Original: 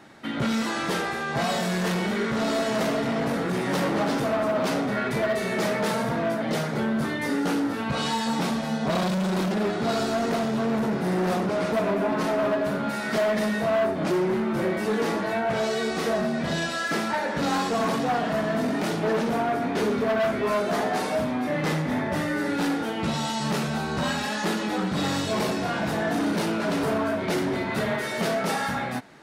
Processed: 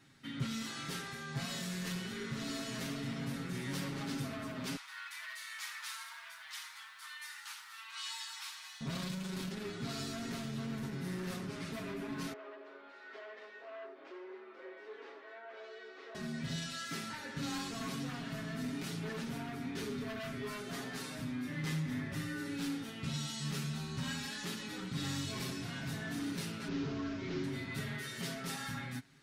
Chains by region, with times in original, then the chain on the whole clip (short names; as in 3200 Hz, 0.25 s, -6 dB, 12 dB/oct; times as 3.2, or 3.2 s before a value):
4.76–8.81 elliptic high-pass 940 Hz, stop band 60 dB + lo-fi delay 85 ms, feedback 55%, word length 9-bit, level -12.5 dB
12.33–16.15 steep high-pass 390 Hz + tape spacing loss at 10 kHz 40 dB
26.68–27.44 delta modulation 32 kbps, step -39.5 dBFS + bell 340 Hz +9 dB 0.36 oct
whole clip: passive tone stack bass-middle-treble 6-0-2; comb 7.4 ms; gain +5 dB